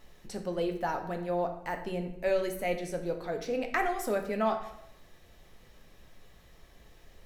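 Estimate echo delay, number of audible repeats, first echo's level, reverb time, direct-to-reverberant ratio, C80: none, none, none, 0.80 s, 4.5 dB, 11.5 dB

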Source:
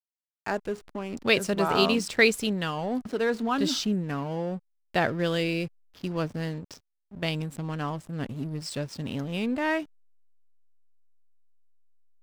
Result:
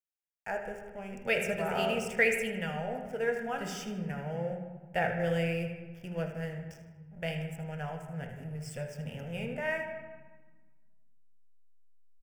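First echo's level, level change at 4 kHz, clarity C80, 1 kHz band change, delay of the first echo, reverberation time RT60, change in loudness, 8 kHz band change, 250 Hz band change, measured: -11.5 dB, -12.0 dB, 7.5 dB, -6.0 dB, 78 ms, 1.3 s, -6.0 dB, -8.0 dB, -9.0 dB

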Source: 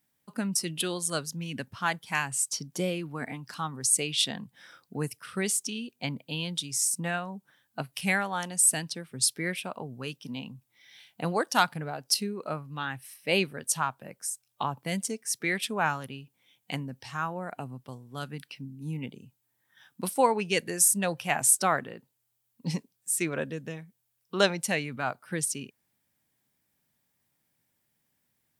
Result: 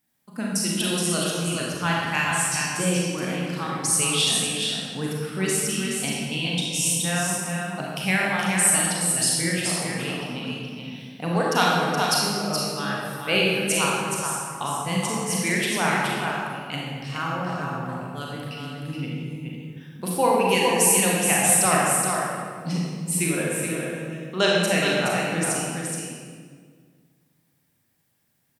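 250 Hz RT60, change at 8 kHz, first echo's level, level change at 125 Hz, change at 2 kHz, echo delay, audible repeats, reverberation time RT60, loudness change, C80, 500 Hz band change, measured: 2.3 s, +5.5 dB, -5.0 dB, +8.5 dB, +7.5 dB, 0.422 s, 1, 1.9 s, +6.0 dB, -1.5 dB, +7.0 dB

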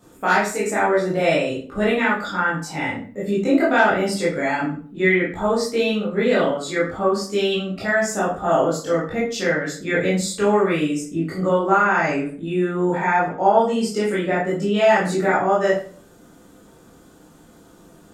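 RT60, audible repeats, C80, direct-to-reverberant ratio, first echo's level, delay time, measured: 0.45 s, none, 10.0 dB, -8.0 dB, none, none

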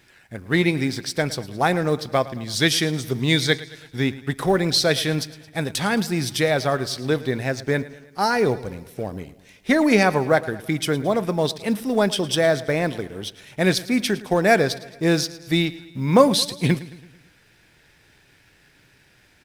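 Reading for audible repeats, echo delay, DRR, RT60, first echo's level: 4, 0.11 s, none, none, -18.0 dB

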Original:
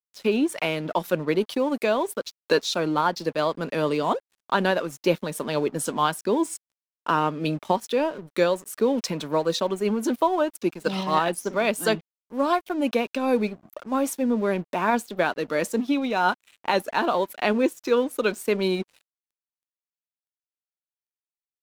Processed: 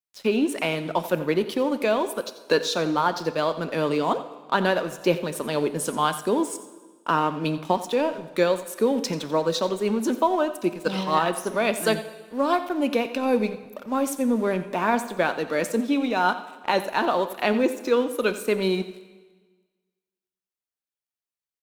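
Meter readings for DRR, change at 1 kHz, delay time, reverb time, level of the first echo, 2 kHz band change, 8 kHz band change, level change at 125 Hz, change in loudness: 10.5 dB, +0.5 dB, 88 ms, 1.4 s, -15.5 dB, +0.5 dB, +0.5 dB, 0.0 dB, +0.5 dB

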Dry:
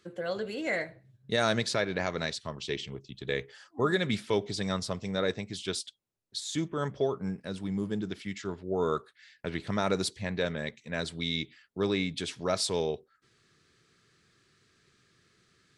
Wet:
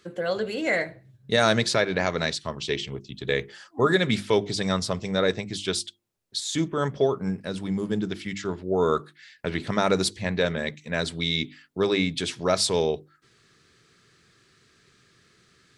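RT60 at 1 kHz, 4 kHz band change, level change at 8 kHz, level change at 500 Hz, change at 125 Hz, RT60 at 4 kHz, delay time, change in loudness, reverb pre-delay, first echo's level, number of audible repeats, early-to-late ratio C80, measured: none, +6.5 dB, +6.5 dB, +6.5 dB, +5.5 dB, none, none, +6.0 dB, none, none, none, none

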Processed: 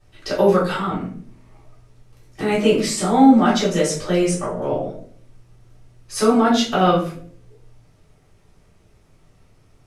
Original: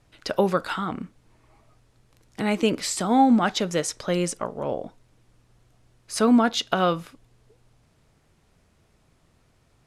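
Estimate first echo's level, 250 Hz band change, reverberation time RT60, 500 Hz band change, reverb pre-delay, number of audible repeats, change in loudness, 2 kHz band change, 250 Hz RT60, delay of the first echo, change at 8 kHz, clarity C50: none, +5.5 dB, 0.50 s, +7.0 dB, 3 ms, none, +5.5 dB, +3.5 dB, 0.75 s, none, +3.5 dB, 5.5 dB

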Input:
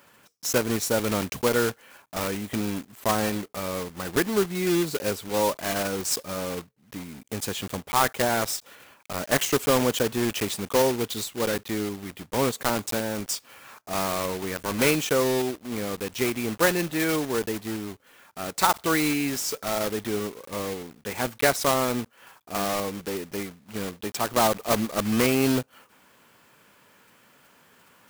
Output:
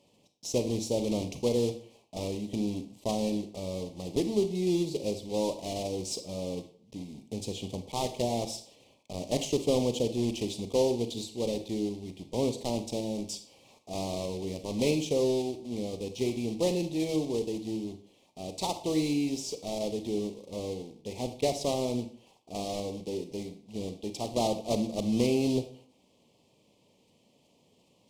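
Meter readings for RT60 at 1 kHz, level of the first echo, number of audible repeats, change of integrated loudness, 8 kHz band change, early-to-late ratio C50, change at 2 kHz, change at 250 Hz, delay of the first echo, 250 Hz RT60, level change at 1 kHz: 0.55 s, none, none, -5.5 dB, -10.0 dB, 11.5 dB, -18.0 dB, -3.0 dB, none, 0.45 s, -11.0 dB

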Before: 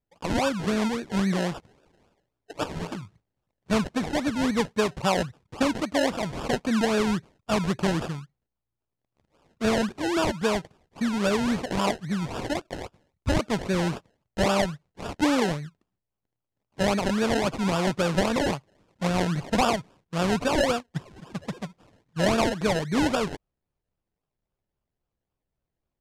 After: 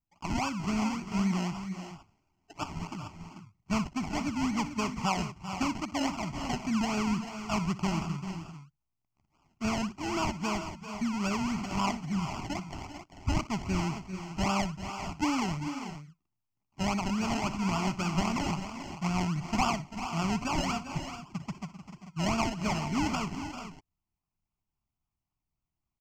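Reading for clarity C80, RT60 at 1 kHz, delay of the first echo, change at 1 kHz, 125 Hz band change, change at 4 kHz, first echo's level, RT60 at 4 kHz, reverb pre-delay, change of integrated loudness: none, none, 61 ms, -3.5 dB, -3.0 dB, -6.0 dB, -16.5 dB, none, none, -6.0 dB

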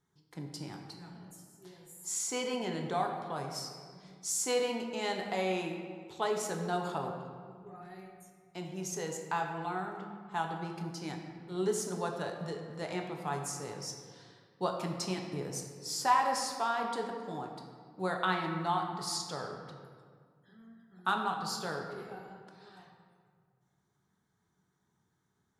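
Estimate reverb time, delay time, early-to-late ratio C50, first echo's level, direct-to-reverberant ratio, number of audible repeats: 1.9 s, none, 4.5 dB, none, 1.5 dB, none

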